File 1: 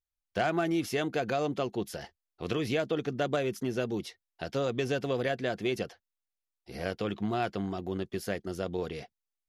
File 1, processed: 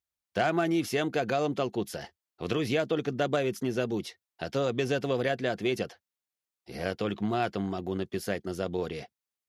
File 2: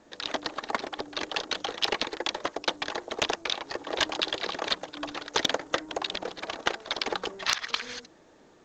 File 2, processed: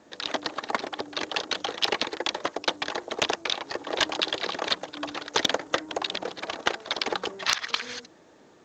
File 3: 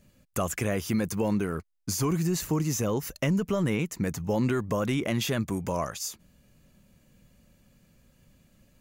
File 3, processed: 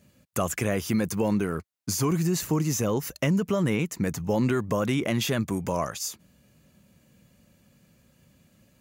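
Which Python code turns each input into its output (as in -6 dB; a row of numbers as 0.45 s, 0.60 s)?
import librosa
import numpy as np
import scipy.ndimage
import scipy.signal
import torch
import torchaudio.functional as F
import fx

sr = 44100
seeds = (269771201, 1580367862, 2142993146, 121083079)

y = scipy.signal.sosfilt(scipy.signal.butter(2, 75.0, 'highpass', fs=sr, output='sos'), x)
y = y * librosa.db_to_amplitude(2.0)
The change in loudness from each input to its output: +2.0 LU, +2.0 LU, +2.0 LU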